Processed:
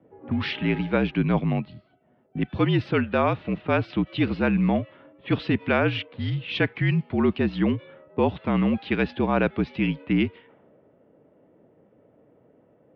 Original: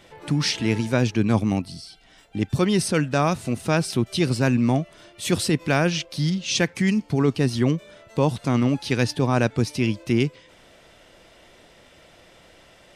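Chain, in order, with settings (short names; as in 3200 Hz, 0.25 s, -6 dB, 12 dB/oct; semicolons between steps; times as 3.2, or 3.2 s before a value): low-pass opened by the level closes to 470 Hz, open at -18 dBFS; mistuned SSB -51 Hz 180–3400 Hz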